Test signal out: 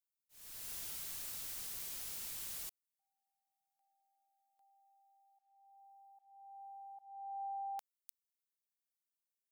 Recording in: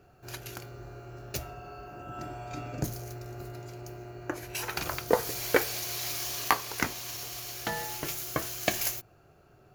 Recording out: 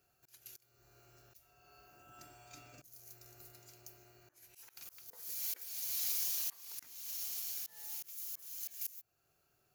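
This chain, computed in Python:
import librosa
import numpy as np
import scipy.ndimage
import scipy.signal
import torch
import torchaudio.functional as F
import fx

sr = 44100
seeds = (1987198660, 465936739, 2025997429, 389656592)

y = fx.auto_swell(x, sr, attack_ms=444.0)
y = scipy.signal.lfilter([1.0, -0.9], [1.0], y)
y = F.gain(torch.from_numpy(y), -2.0).numpy()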